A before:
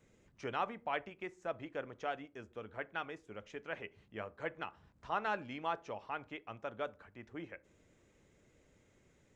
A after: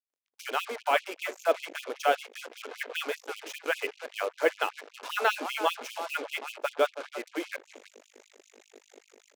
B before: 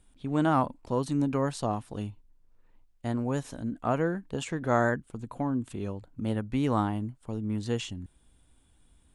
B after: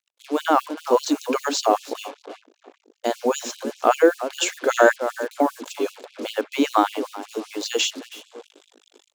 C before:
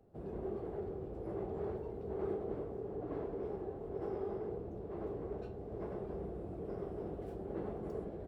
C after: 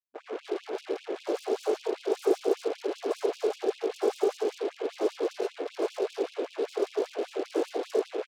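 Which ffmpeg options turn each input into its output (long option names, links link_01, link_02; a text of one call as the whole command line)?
ffmpeg -i in.wav -filter_complex "[0:a]asplit=2[link_01][link_02];[link_02]adelay=324,lowpass=frequency=2100:poles=1,volume=-13dB,asplit=2[link_03][link_04];[link_04]adelay=324,lowpass=frequency=2100:poles=1,volume=0.27,asplit=2[link_05][link_06];[link_06]adelay=324,lowpass=frequency=2100:poles=1,volume=0.27[link_07];[link_01][link_03][link_05][link_07]amix=inputs=4:normalize=0,aeval=exprs='val(0)+0.002*(sin(2*PI*50*n/s)+sin(2*PI*2*50*n/s)/2+sin(2*PI*3*50*n/s)/3+sin(2*PI*4*50*n/s)/4+sin(2*PI*5*50*n/s)/5)':channel_layout=same,dynaudnorm=framelen=130:gausssize=13:maxgain=5dB,highshelf=frequency=2400:gain=10,acontrast=74,aresample=16000,aresample=44100,acrusher=bits=5:mix=0:aa=0.5,equalizer=frequency=470:width_type=o:width=1.2:gain=7.5,bandreject=frequency=1900:width=14,afftfilt=real='re*gte(b*sr/1024,220*pow(2500/220,0.5+0.5*sin(2*PI*5.1*pts/sr)))':imag='im*gte(b*sr/1024,220*pow(2500/220,0.5+0.5*sin(2*PI*5.1*pts/sr)))':win_size=1024:overlap=0.75,volume=-2dB" out.wav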